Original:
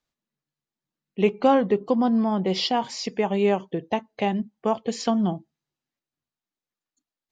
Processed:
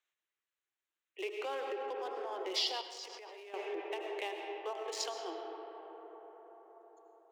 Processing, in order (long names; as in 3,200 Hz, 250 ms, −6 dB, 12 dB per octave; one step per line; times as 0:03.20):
adaptive Wiener filter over 9 samples
Butterworth high-pass 320 Hz 96 dB per octave
comb and all-pass reverb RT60 4.9 s, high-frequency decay 0.3×, pre-delay 55 ms, DRR 4.5 dB
brickwall limiter −19.5 dBFS, peak gain reduction 10.5 dB
parametric band 760 Hz −6.5 dB 2.2 octaves
0:02.81–0:03.54: output level in coarse steps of 22 dB
tilt shelving filter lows −4.5 dB, about 1,100 Hz
one half of a high-frequency compander encoder only
level −4.5 dB